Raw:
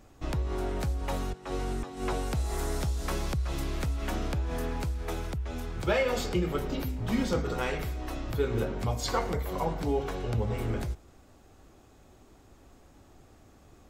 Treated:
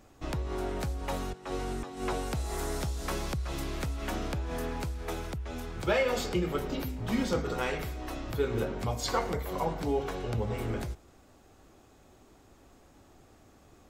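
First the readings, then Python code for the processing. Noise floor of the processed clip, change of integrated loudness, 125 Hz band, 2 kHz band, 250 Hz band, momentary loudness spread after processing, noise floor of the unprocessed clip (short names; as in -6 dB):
-59 dBFS, -1.5 dB, -3.0 dB, 0.0 dB, -1.0 dB, 7 LU, -57 dBFS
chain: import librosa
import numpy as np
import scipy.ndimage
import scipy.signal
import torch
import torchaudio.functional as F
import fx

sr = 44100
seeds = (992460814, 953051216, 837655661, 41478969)

y = fx.low_shelf(x, sr, hz=130.0, db=-5.0)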